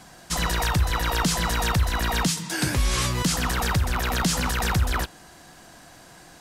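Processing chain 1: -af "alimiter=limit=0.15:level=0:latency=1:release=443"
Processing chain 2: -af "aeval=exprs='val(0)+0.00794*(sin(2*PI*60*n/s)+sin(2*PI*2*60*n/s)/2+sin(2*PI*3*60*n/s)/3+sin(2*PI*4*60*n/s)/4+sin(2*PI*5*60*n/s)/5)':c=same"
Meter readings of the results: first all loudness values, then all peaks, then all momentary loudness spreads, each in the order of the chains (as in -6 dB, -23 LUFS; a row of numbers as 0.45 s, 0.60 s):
-27.0 LUFS, -24.0 LUFS; -16.5 dBFS, -11.5 dBFS; 3 LU, 20 LU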